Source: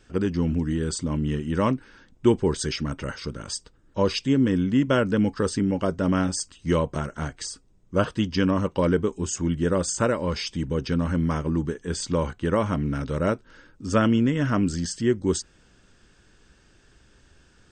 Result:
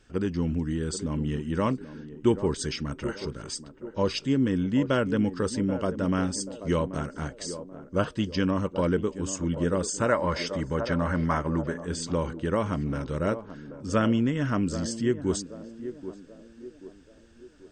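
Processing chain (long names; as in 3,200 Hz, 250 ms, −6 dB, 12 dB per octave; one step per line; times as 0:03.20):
feedback echo with a band-pass in the loop 783 ms, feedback 49%, band-pass 430 Hz, level −10 dB
gain on a spectral selection 0:10.07–0:11.85, 540–2,200 Hz +8 dB
level −3.5 dB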